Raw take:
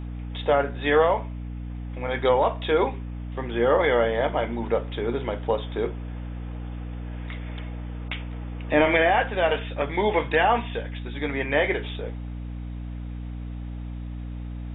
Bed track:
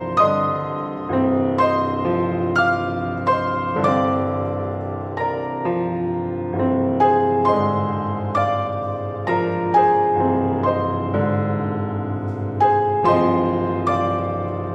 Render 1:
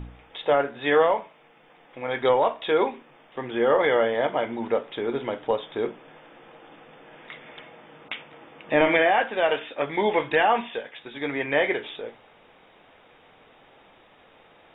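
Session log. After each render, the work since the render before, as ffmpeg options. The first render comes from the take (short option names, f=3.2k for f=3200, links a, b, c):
-af "bandreject=f=60:t=h:w=4,bandreject=f=120:t=h:w=4,bandreject=f=180:t=h:w=4,bandreject=f=240:t=h:w=4,bandreject=f=300:t=h:w=4"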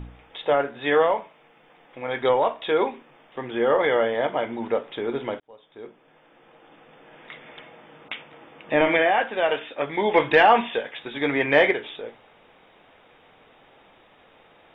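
-filter_complex "[0:a]asettb=1/sr,asplit=3[a][b][c];[a]atrim=end=10.144[d];[b]atrim=start=10.14:end=11.71,asetpts=PTS-STARTPTS,afade=t=in:d=0.004:c=qsin,afade=t=out:st=1.566:d=0.004:c=qsin,acontrast=34[e];[c]atrim=start=11.706[f];[d][e]acrossfade=d=0.004:c1=hsin:c2=qsin[g];[g][f]acrossfade=d=0.004:c1=qsin:c2=hsin,asplit=2[h][i];[h]atrim=end=5.4,asetpts=PTS-STARTPTS,afade=t=out:st=5.396:d=0.004:c=hsin[j];[i]atrim=start=5.4,asetpts=PTS-STARTPTS,afade=t=in:d=1.95[k];[j][k]concat=n=2:v=0:a=1"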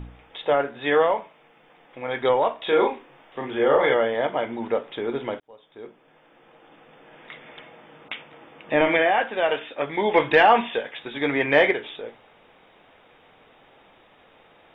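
-filter_complex "[0:a]asettb=1/sr,asplit=3[a][b][c];[a]atrim=end=2.624[d];[b]atrim=start=2.62:end=3.94,asetpts=PTS-STARTPTS,afade=t=in:d=0.004:c=qsin,afade=t=out:st=1.316:d=0.004:c=qsin,asplit=2[e][f];[f]adelay=36,volume=-2.5dB[g];[e][g]amix=inputs=2:normalize=0,atrim=end_sample=58212[h];[c]atrim=start=3.936[i];[d][h]acrossfade=d=0.004:c1=hsin:c2=qsin[j];[j][i]acrossfade=d=0.004:c1=qsin:c2=hsin"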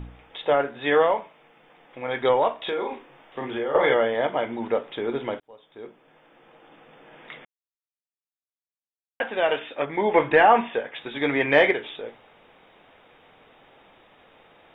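-filter_complex "[0:a]asettb=1/sr,asplit=3[a][b][c];[a]atrim=end=2.584[d];[b]atrim=start=2.58:end=3.75,asetpts=PTS-STARTPTS,afade=t=in:d=0.004:c=qsin,afade=t=out:st=1.166:d=0.004:c=qsin,acompressor=threshold=-24dB:ratio=6:attack=3.2:release=140:knee=1:detection=peak[e];[c]atrim=start=3.746[f];[d][e]acrossfade=d=0.004:c1=hsin:c2=qsin[g];[g][f]acrossfade=d=0.004:c1=qsin:c2=hsin,asettb=1/sr,asplit=3[h][i][j];[h]atrim=end=9.854[k];[i]atrim=start=9.85:end=10.94,asetpts=PTS-STARTPTS,afade=t=in:d=0.004:c=qsin,afade=t=out:st=1.086:d=0.004:c=qsin,lowpass=2.2k[l];[j]atrim=start=10.936[m];[k][l]acrossfade=d=0.004:c1=hsin:c2=qsin[n];[n][m]acrossfade=d=0.004:c1=qsin:c2=hsin,asplit=3[o][p][q];[o]atrim=end=7.45,asetpts=PTS-STARTPTS,afade=t=out:st=7.446:d=0.004:c=hsin[r];[p]atrim=start=7.45:end=9.2,asetpts=PTS-STARTPTS,volume=0[s];[q]atrim=start=9.2,asetpts=PTS-STARTPTS,afade=t=in:d=0.004:c=hsin[t];[r][s][t]concat=n=3:v=0:a=1"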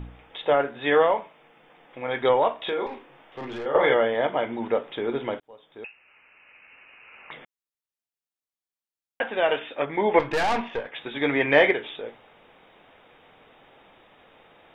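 -filter_complex "[0:a]asettb=1/sr,asplit=3[a][b][c];[a]atrim=end=2.864[d];[b]atrim=start=2.86:end=3.66,asetpts=PTS-STARTPTS,afade=t=in:d=0.004:c=qsin,afade=t=out:st=0.796:d=0.004:c=qsin,aeval=exprs='(tanh(31.6*val(0)+0.3)-tanh(0.3))/31.6':c=same[e];[c]atrim=start=3.656[f];[d][e]acrossfade=d=0.004:c1=hsin:c2=qsin[g];[g][f]acrossfade=d=0.004:c1=qsin:c2=hsin,asettb=1/sr,asplit=3[h][i][j];[h]atrim=end=5.844[k];[i]atrim=start=5.84:end=7.31,asetpts=PTS-STARTPTS,afade=t=in:d=0.004:c=qsin,afade=t=out:st=1.466:d=0.004:c=qsin,lowpass=f=2.6k:t=q:w=0.5098,lowpass=f=2.6k:t=q:w=0.6013,lowpass=f=2.6k:t=q:w=0.9,lowpass=f=2.6k:t=q:w=2.563,afreqshift=-3000[l];[j]atrim=start=7.306[m];[k][l]acrossfade=d=0.004:c1=hsin:c2=qsin[n];[n][m]acrossfade=d=0.004:c1=qsin:c2=hsin,asettb=1/sr,asplit=3[o][p][q];[o]atrim=end=10.194[r];[p]atrim=start=10.19:end=10.92,asetpts=PTS-STARTPTS,afade=t=in:d=0.004:c=qsin,afade=t=out:st=0.726:d=0.004:c=qsin,aeval=exprs='(tanh(11.2*val(0)+0.5)-tanh(0.5))/11.2':c=same[s];[q]atrim=start=10.916[t];[r][s]acrossfade=d=0.004:c1=hsin:c2=qsin[u];[u][t]acrossfade=d=0.004:c1=qsin:c2=hsin"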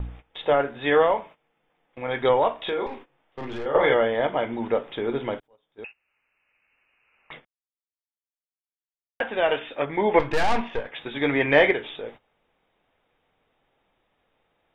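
-af "lowshelf=f=93:g=11,agate=range=-17dB:threshold=-42dB:ratio=16:detection=peak"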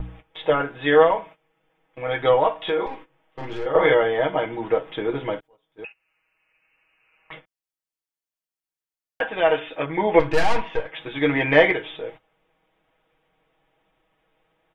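-af "bandreject=f=3.7k:w=23,aecho=1:1:6.3:0.77"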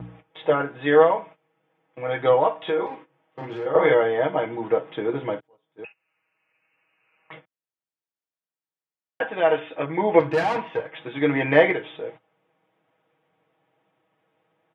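-af "highpass=f=100:w=0.5412,highpass=f=100:w=1.3066,highshelf=f=2.9k:g=-10"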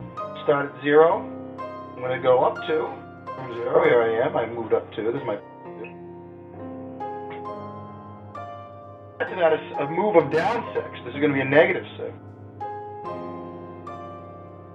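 -filter_complex "[1:a]volume=-17dB[a];[0:a][a]amix=inputs=2:normalize=0"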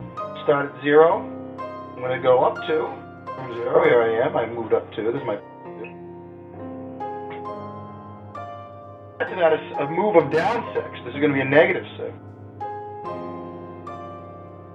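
-af "volume=1.5dB,alimiter=limit=-2dB:level=0:latency=1"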